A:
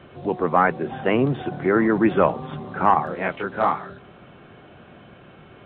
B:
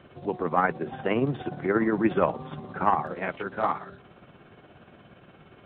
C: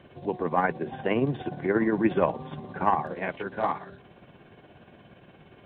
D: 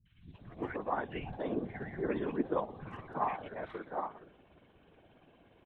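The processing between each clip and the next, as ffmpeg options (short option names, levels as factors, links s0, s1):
-af "tremolo=f=17:d=0.46,volume=0.668"
-af "bandreject=f=1300:w=5.4"
-filter_complex "[0:a]afftfilt=real='hypot(re,im)*cos(2*PI*random(0))':imag='hypot(re,im)*sin(2*PI*random(1))':win_size=512:overlap=0.75,acrossover=split=160|1700[s0][s1][s2];[s2]adelay=60[s3];[s1]adelay=340[s4];[s0][s4][s3]amix=inputs=3:normalize=0,volume=0.708"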